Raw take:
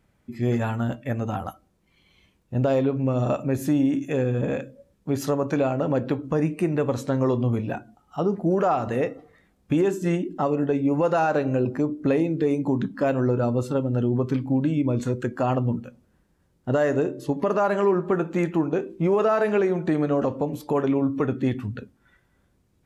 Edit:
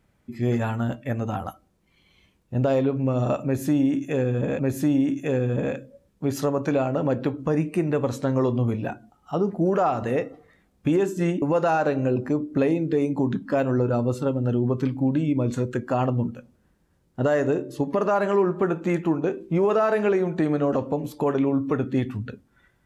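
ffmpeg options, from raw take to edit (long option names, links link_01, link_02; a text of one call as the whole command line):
ffmpeg -i in.wav -filter_complex "[0:a]asplit=3[link_01][link_02][link_03];[link_01]atrim=end=4.592[link_04];[link_02]atrim=start=3.438:end=10.272[link_05];[link_03]atrim=start=10.908[link_06];[link_04][link_05]acrossfade=duration=0.004:curve1=hsin:curve2=hsin[link_07];[link_07][link_06]acrossfade=duration=0.004:curve1=hsin:curve2=hsin" out.wav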